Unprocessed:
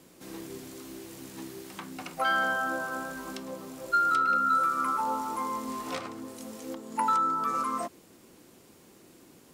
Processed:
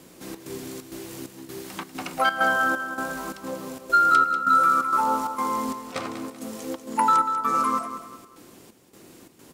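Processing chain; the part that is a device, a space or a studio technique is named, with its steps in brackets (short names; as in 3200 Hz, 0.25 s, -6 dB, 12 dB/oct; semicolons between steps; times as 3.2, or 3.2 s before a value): trance gate with a delay (step gate "xxx.xxx.xxx.." 131 bpm -12 dB; feedback echo 0.192 s, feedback 34%, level -10.5 dB); gain +6.5 dB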